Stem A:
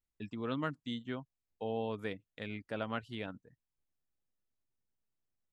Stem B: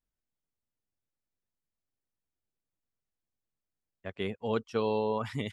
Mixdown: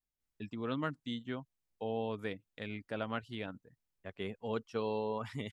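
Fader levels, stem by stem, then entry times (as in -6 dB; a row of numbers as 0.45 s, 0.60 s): 0.0 dB, -6.0 dB; 0.20 s, 0.00 s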